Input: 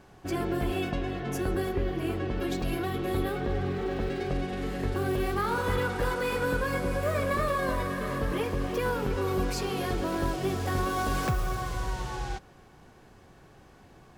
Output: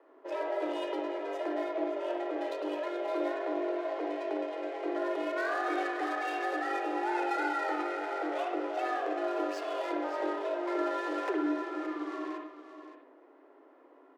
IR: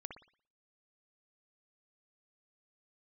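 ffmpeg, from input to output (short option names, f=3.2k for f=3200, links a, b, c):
-filter_complex "[0:a]asettb=1/sr,asplit=3[a][b][c];[a]atrim=end=9.924[d];[b]atrim=start=9.92:end=12.02,asetpts=PTS-STARTPTS,afade=t=in:d=0.004:c=qsin,afade=t=out:st=2.096:d=0.004:c=qsin,equalizer=f=9.6k:w=0.48:g=-7.5[e];[c]atrim=start=12.016[f];[d][e]acrossfade=d=0.004:c1=hsin:c2=qsin[g];[g][f]acrossfade=d=0.004:c1=qsin:c2=hsin,adynamicsmooth=sensitivity=7:basefreq=1.4k,afreqshift=260,aecho=1:1:571:0.266[h];[1:a]atrim=start_sample=2205[i];[h][i]afir=irnorm=-1:irlink=0"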